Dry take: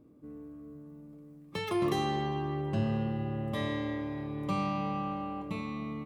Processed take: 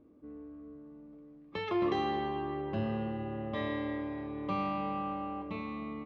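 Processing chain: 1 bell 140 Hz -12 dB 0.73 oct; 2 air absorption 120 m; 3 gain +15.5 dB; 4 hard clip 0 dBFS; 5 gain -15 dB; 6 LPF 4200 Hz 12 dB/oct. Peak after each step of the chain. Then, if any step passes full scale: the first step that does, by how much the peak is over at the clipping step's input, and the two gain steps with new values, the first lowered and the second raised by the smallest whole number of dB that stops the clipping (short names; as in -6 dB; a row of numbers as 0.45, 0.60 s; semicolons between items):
-20.0, -20.5, -5.0, -5.0, -20.0, -20.0 dBFS; no overload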